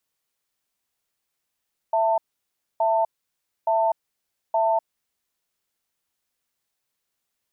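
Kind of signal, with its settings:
tone pair in a cadence 663 Hz, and 894 Hz, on 0.25 s, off 0.62 s, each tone −20.5 dBFS 2.98 s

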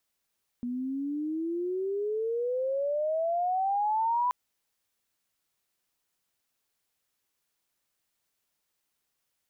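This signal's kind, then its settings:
glide logarithmic 240 Hz → 1,000 Hz −30 dBFS → −23.5 dBFS 3.68 s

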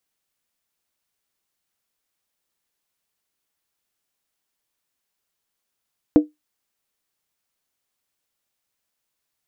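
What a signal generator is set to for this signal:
struck skin, lowest mode 302 Hz, decay 0.17 s, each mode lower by 10 dB, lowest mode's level −4.5 dB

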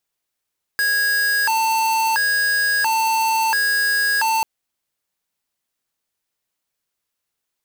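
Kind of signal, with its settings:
siren hi-lo 893–1,650 Hz 0.73 per second square −18.5 dBFS 3.64 s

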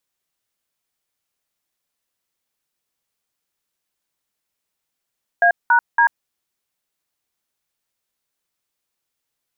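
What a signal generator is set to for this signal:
touch tones "A#D", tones 89 ms, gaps 192 ms, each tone −13 dBFS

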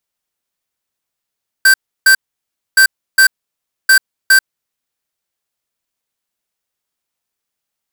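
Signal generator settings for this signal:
beeps in groups square 1,560 Hz, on 0.09 s, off 0.32 s, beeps 2, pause 0.62 s, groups 3, −7 dBFS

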